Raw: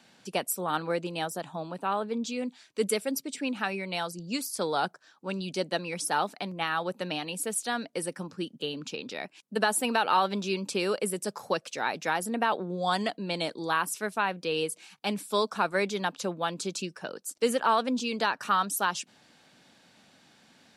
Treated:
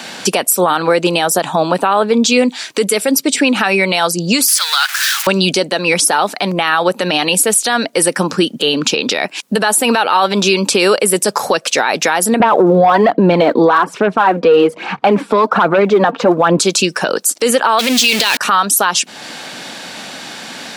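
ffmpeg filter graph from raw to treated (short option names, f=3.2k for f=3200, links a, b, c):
-filter_complex "[0:a]asettb=1/sr,asplit=3[a][b][c];[a]atrim=end=4.484[d];[b]atrim=start=4.48:end=5.27,asetpts=PTS-STARTPTS,afade=t=in:d=0.004:c=qsin,afade=t=out:st=0.786:d=0.004:c=qsin,aeval=exprs='val(0)+0.5*0.0133*sgn(val(0))':c=same,highpass=f=1.5k:w=0.5412,highpass=f=1.5k:w=1.3066[e];[c]atrim=start=5.266[f];[d][e]acrossfade=d=0.004:c1=hsin:c2=qsin[g];[g][f]acrossfade=d=0.004:c1=qsin:c2=hsin,asettb=1/sr,asplit=3[h][i][j];[h]atrim=end=12.404[k];[i]atrim=start=12.4:end=16.59,asetpts=PTS-STARTPTS,afade=t=in:d=0.004:c=qsin,afade=t=out:st=4.186:d=0.004:c=qsin,lowpass=1.3k,aphaser=in_gain=1:out_gain=1:delay=4.4:decay=0.47:speed=1.2:type=sinusoidal,aeval=exprs='0.316*sin(PI/2*2.24*val(0)/0.316)':c=same[l];[j]atrim=start=16.586[m];[k][l]acrossfade=d=0.004:c1=hsin:c2=qsin[n];[n][m]acrossfade=d=0.004:c1=qsin:c2=hsin,asettb=1/sr,asplit=3[o][p][q];[o]atrim=end=17.794[r];[p]atrim=start=17.79:end=18.37,asetpts=PTS-STARTPTS,afade=t=in:d=0.004:c=qsin,afade=t=out:st=0.576:d=0.004:c=qsin,aeval=exprs='val(0)+0.5*0.0282*sgn(val(0))':c=same,highshelf=f=1.8k:t=q:w=1.5:g=9.5[s];[q]atrim=start=18.366[t];[r][s]acrossfade=d=0.004:c1=hsin:c2=qsin[u];[u][t]acrossfade=d=0.004:c1=qsin:c2=hsin,highpass=f=370:p=1,acompressor=threshold=-44dB:ratio=2,alimiter=level_in=33dB:limit=-1dB:release=50:level=0:latency=1,volume=-1.5dB"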